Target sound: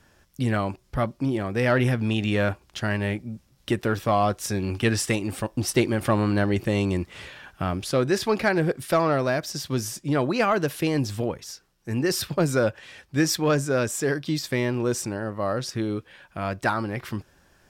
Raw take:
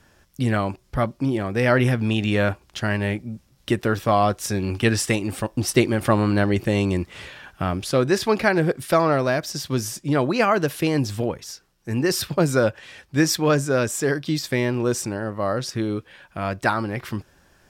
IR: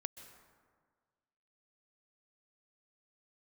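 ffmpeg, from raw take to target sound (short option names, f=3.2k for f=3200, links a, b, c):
-af "acontrast=45,volume=-8dB"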